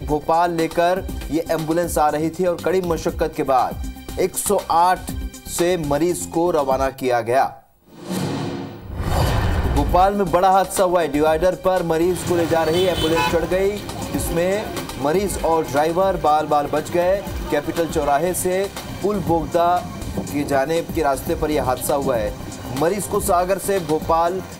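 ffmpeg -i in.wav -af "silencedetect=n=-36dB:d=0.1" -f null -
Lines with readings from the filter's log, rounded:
silence_start: 7.59
silence_end: 7.93 | silence_duration: 0.34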